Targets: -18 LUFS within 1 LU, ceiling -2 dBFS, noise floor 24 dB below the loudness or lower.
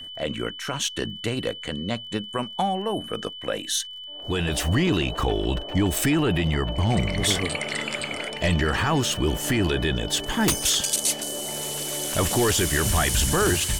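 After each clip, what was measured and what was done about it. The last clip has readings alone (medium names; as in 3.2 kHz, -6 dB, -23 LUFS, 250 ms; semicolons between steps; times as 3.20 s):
tick rate 18 per s; steady tone 3 kHz; tone level -36 dBFS; loudness -24.0 LUFS; peak level -9.5 dBFS; loudness target -18.0 LUFS
-> de-click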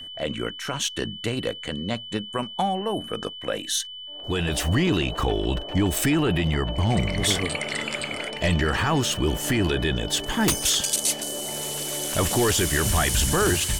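tick rate 0.072 per s; steady tone 3 kHz; tone level -36 dBFS
-> band-stop 3 kHz, Q 30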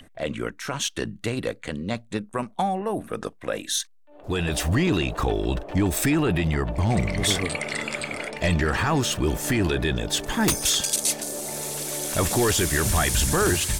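steady tone not found; loudness -24.5 LUFS; peak level -10.0 dBFS; loudness target -18.0 LUFS
-> trim +6.5 dB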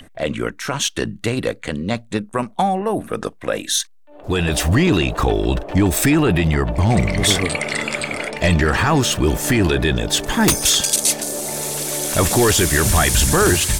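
loudness -18.0 LUFS; peak level -3.5 dBFS; noise floor -45 dBFS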